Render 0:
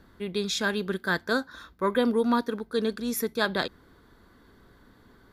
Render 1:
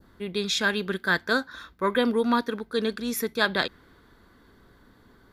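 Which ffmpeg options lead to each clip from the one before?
ffmpeg -i in.wav -af "adynamicequalizer=threshold=0.00794:dfrequency=2400:dqfactor=0.77:tfrequency=2400:tqfactor=0.77:attack=5:release=100:ratio=0.375:range=3:mode=boostabove:tftype=bell" out.wav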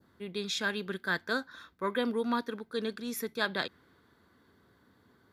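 ffmpeg -i in.wav -af "highpass=frequency=76:width=0.5412,highpass=frequency=76:width=1.3066,volume=-7.5dB" out.wav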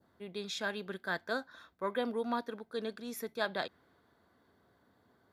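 ffmpeg -i in.wav -af "equalizer=frequency=680:width_type=o:width=0.72:gain=9.5,volume=-6dB" out.wav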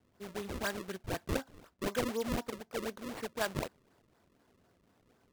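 ffmpeg -i in.wav -af "acrusher=samples=33:mix=1:aa=0.000001:lfo=1:lforange=52.8:lforate=4" out.wav

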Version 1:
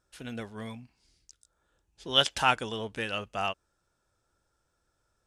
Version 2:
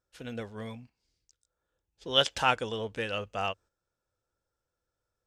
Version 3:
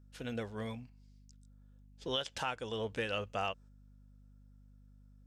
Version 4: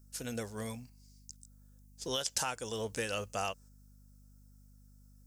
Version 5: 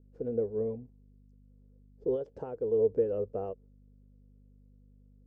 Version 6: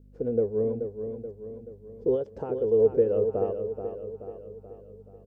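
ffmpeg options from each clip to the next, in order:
ffmpeg -i in.wav -af "agate=range=-9dB:threshold=-52dB:ratio=16:detection=peak,equalizer=frequency=100:width_type=o:width=0.33:gain=4,equalizer=frequency=500:width_type=o:width=0.33:gain=7,equalizer=frequency=10000:width_type=o:width=0.33:gain=-7,volume=-1.5dB" out.wav
ffmpeg -i in.wav -af "acompressor=threshold=-35dB:ratio=1.5,aeval=exprs='val(0)+0.00126*(sin(2*PI*50*n/s)+sin(2*PI*2*50*n/s)/2+sin(2*PI*3*50*n/s)/3+sin(2*PI*4*50*n/s)/4+sin(2*PI*5*50*n/s)/5)':channel_layout=same,alimiter=limit=-22.5dB:level=0:latency=1:release=356" out.wav
ffmpeg -i in.wav -af "aexciter=amount=6.5:drive=5.9:freq=4800" out.wav
ffmpeg -i in.wav -af "lowpass=frequency=440:width_type=q:width=5.3" out.wav
ffmpeg -i in.wav -af "aecho=1:1:430|860|1290|1720|2150|2580:0.398|0.203|0.104|0.0528|0.0269|0.0137,volume=5.5dB" out.wav

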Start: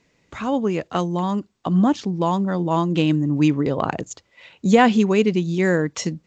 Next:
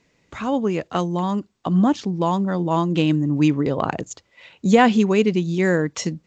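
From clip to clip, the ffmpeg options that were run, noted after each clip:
ffmpeg -i in.wav -af anull out.wav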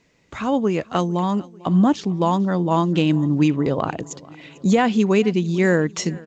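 ffmpeg -i in.wav -af "alimiter=limit=-8.5dB:level=0:latency=1:release=314,aecho=1:1:447|894|1341|1788:0.075|0.042|0.0235|0.0132,volume=1.5dB" out.wav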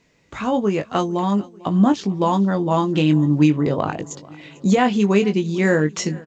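ffmpeg -i in.wav -filter_complex "[0:a]asplit=2[link_01][link_02];[link_02]adelay=20,volume=-7dB[link_03];[link_01][link_03]amix=inputs=2:normalize=0" out.wav

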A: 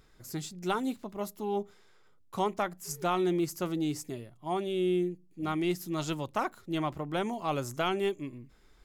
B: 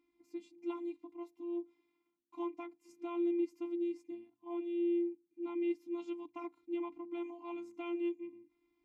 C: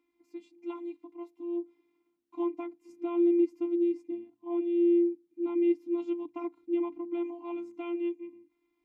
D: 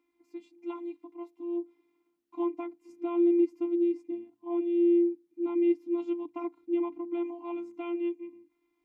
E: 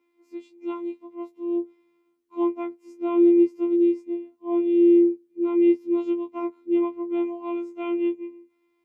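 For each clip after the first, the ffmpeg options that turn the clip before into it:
ffmpeg -i in.wav -filter_complex "[0:a]afftfilt=real='hypot(re,im)*cos(PI*b)':imag='0':win_size=512:overlap=0.75,asplit=3[link_01][link_02][link_03];[link_01]bandpass=frequency=300:width_type=q:width=8,volume=0dB[link_04];[link_02]bandpass=frequency=870:width_type=q:width=8,volume=-6dB[link_05];[link_03]bandpass=frequency=2240:width_type=q:width=8,volume=-9dB[link_06];[link_04][link_05][link_06]amix=inputs=3:normalize=0,volume=5dB" out.wav
ffmpeg -i in.wav -filter_complex "[0:a]bass=frequency=250:gain=-6,treble=frequency=4000:gain=-5,acrossover=split=560[link_01][link_02];[link_01]dynaudnorm=framelen=360:gausssize=9:maxgain=9dB[link_03];[link_03][link_02]amix=inputs=2:normalize=0,volume=2dB" out.wav
ffmpeg -i in.wav -af "equalizer=frequency=870:width_type=o:width=2.9:gain=3,volume=-1dB" out.wav
ffmpeg -i in.wav -af "afftfilt=real='re*2*eq(mod(b,4),0)':imag='im*2*eq(mod(b,4),0)':win_size=2048:overlap=0.75,volume=3dB" out.wav

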